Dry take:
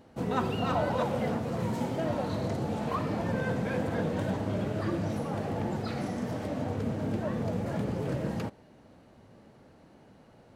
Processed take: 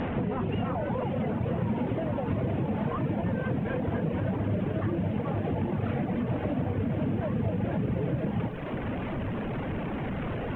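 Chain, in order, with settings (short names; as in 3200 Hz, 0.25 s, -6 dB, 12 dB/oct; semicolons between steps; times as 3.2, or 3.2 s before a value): delta modulation 16 kbps, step -35.5 dBFS; reverb removal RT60 0.87 s; limiter -26.5 dBFS, peak gain reduction 6.5 dB; air absorption 190 m; notch 1300 Hz, Q 30; reverse echo 0.558 s -18.5 dB; compressor 12:1, threshold -38 dBFS, peak gain reduction 8 dB; low shelf 380 Hz +7 dB; lo-fi delay 0.496 s, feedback 55%, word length 12-bit, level -11 dB; gain +8 dB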